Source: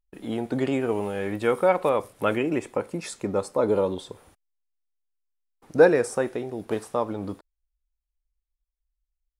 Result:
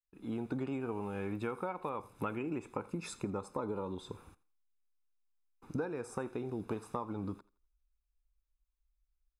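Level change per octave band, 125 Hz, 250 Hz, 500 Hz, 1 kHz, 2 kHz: -7.5, -10.0, -17.5, -12.0, -16.5 dB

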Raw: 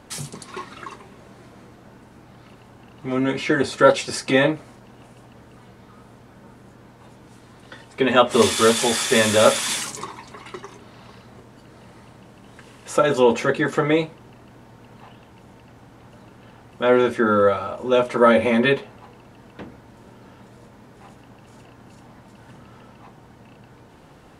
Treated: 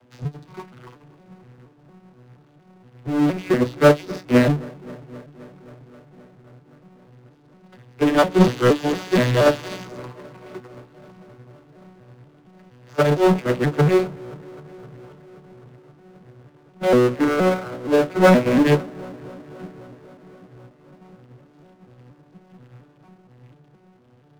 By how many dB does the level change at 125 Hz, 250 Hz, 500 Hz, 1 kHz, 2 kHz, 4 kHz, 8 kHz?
+9.0, +3.5, -0.5, -2.0, -2.5, -7.0, -12.5 dB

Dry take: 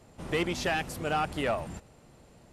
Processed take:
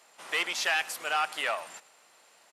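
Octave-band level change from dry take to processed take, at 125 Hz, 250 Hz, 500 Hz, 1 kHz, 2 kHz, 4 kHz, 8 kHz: under -25 dB, -17.0 dB, -6.5 dB, 0.0 dB, +5.0 dB, +5.5 dB, +5.5 dB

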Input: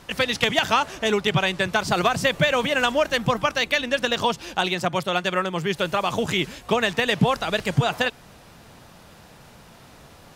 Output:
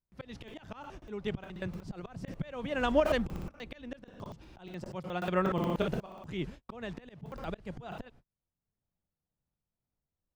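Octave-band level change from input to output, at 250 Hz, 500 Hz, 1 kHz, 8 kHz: -9.0 dB, -11.5 dB, -15.5 dB, under -20 dB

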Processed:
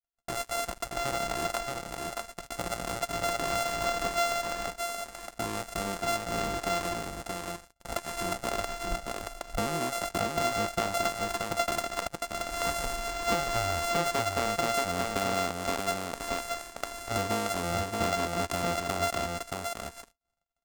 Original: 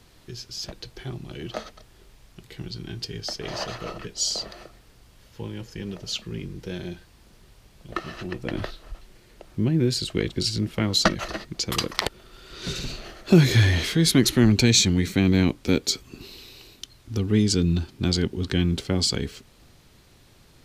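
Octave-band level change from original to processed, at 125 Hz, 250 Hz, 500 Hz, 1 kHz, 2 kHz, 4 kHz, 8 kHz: -15.5, -13.5, -1.0, +8.0, -1.5, -9.0, -5.5 dB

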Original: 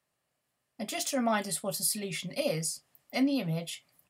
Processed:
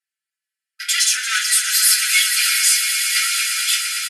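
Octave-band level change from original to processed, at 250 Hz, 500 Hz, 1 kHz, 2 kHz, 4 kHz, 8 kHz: under -40 dB, under -40 dB, +5.5 dB, +21.0 dB, +21.5 dB, +20.0 dB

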